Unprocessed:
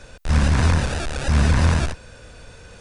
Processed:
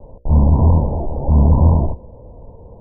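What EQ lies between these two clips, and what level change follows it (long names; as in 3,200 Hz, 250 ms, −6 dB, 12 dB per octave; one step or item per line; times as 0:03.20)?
Butterworth low-pass 990 Hz 96 dB per octave
mains-hum notches 60/120/180/240/300/360/420/480/540/600 Hz
notch filter 750 Hz, Q 18
+6.0 dB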